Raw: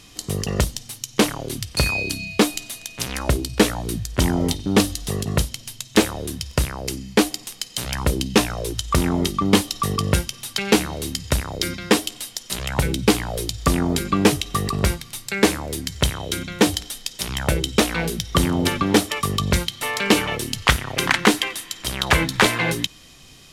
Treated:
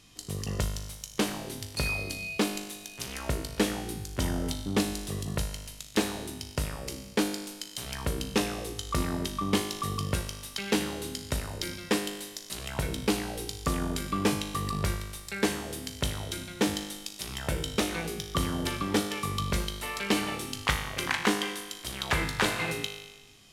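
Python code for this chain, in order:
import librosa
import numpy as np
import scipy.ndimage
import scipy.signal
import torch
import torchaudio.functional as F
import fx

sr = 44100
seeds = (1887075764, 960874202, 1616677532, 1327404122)

y = fx.comb_fb(x, sr, f0_hz=51.0, decay_s=1.2, harmonics='all', damping=0.0, mix_pct=80)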